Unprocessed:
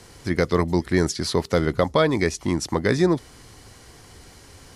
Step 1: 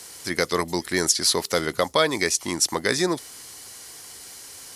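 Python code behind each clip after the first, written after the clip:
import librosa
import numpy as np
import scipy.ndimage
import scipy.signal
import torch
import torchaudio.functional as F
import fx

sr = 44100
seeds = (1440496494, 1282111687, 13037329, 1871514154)

y = fx.riaa(x, sr, side='recording')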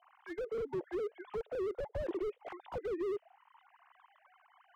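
y = fx.sine_speech(x, sr)
y = fx.auto_wah(y, sr, base_hz=400.0, top_hz=1100.0, q=5.1, full_db=-19.0, direction='down')
y = fx.slew_limit(y, sr, full_power_hz=6.3)
y = F.gain(torch.from_numpy(y), 2.5).numpy()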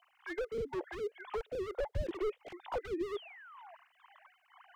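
y = fx.phaser_stages(x, sr, stages=2, low_hz=130.0, high_hz=1100.0, hz=2.1, feedback_pct=30)
y = fx.spec_paint(y, sr, seeds[0], shape='fall', start_s=3.15, length_s=0.6, low_hz=630.0, high_hz=3600.0, level_db=-59.0)
y = F.gain(torch.from_numpy(y), 5.5).numpy()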